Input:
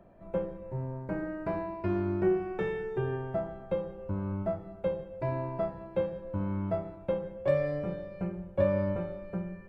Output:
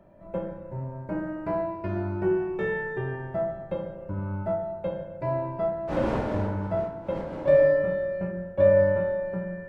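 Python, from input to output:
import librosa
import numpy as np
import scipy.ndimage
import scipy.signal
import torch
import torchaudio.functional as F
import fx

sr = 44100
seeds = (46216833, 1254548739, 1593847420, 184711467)

y = fx.dmg_wind(x, sr, seeds[0], corner_hz=590.0, level_db=-35.0, at=(5.87, 7.67), fade=0.02)
y = fx.rev_fdn(y, sr, rt60_s=1.4, lf_ratio=0.95, hf_ratio=0.3, size_ms=10.0, drr_db=1.5)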